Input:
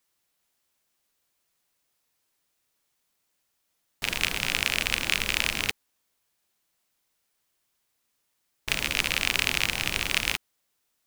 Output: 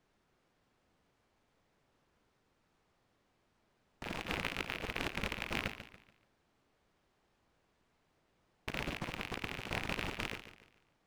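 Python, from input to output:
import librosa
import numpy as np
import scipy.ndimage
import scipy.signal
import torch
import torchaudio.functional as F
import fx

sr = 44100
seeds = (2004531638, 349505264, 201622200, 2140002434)

y = np.repeat(x[::3], 3)[:len(x)]
y = fx.over_compress(y, sr, threshold_db=-32.0, ratio=-0.5)
y = fx.dmg_noise_colour(y, sr, seeds[0], colour='pink', level_db=-72.0)
y = fx.lowpass(y, sr, hz=1100.0, slope=6)
y = fx.low_shelf(y, sr, hz=70.0, db=-8.0)
y = fx.echo_feedback(y, sr, ms=143, feedback_pct=37, wet_db=-11.5)
y = fx.record_warp(y, sr, rpm=78.0, depth_cents=100.0)
y = y * 10.0 ** (-1.5 / 20.0)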